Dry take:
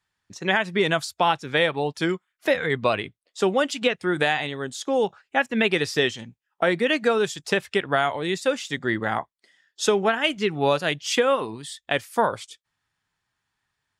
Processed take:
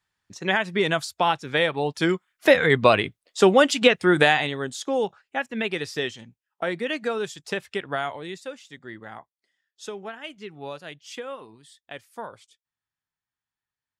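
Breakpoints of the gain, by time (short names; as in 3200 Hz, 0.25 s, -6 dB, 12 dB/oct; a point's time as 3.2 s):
1.7 s -1 dB
2.5 s +5.5 dB
4.13 s +5.5 dB
5.43 s -6 dB
8.1 s -6 dB
8.59 s -15 dB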